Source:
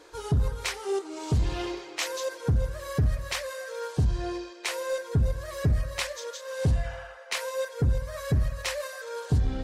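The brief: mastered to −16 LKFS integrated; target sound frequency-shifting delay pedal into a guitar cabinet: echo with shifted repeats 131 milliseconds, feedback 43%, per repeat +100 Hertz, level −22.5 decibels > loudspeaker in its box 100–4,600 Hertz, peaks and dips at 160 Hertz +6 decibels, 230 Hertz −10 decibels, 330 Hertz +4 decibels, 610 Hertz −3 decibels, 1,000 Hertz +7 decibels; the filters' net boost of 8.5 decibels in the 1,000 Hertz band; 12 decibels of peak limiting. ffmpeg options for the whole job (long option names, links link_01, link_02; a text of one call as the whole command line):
ffmpeg -i in.wav -filter_complex "[0:a]equalizer=frequency=1000:width_type=o:gain=5,alimiter=level_in=4dB:limit=-24dB:level=0:latency=1,volume=-4dB,asplit=4[link_01][link_02][link_03][link_04];[link_02]adelay=131,afreqshift=100,volume=-22.5dB[link_05];[link_03]adelay=262,afreqshift=200,volume=-29.8dB[link_06];[link_04]adelay=393,afreqshift=300,volume=-37.2dB[link_07];[link_01][link_05][link_06][link_07]amix=inputs=4:normalize=0,highpass=100,equalizer=frequency=160:width_type=q:width=4:gain=6,equalizer=frequency=230:width_type=q:width=4:gain=-10,equalizer=frequency=330:width_type=q:width=4:gain=4,equalizer=frequency=610:width_type=q:width=4:gain=-3,equalizer=frequency=1000:width_type=q:width=4:gain=7,lowpass=frequency=4600:width=0.5412,lowpass=frequency=4600:width=1.3066,volume=20dB" out.wav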